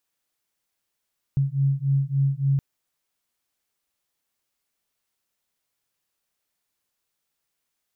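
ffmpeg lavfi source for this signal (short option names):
-f lavfi -i "aevalsrc='0.075*(sin(2*PI*136*t)+sin(2*PI*139.5*t))':d=1.22:s=44100"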